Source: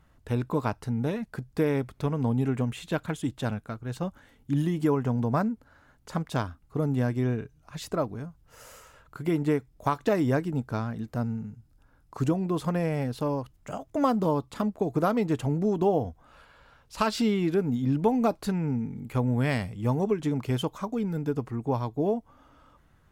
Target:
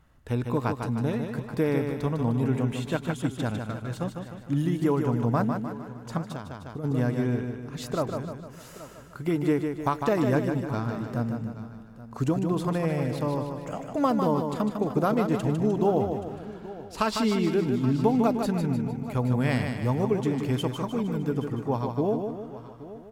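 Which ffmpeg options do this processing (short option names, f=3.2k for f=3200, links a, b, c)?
-filter_complex "[0:a]asplit=2[a][b];[b]aecho=0:1:152|304|456|608|760|912:0.501|0.246|0.12|0.059|0.0289|0.0142[c];[a][c]amix=inputs=2:normalize=0,asplit=3[d][e][f];[d]afade=t=out:st=6.22:d=0.02[g];[e]acompressor=threshold=-34dB:ratio=5,afade=t=in:st=6.22:d=0.02,afade=t=out:st=6.83:d=0.02[h];[f]afade=t=in:st=6.83:d=0.02[i];[g][h][i]amix=inputs=3:normalize=0,asplit=2[j][k];[k]aecho=0:1:826:0.15[l];[j][l]amix=inputs=2:normalize=0"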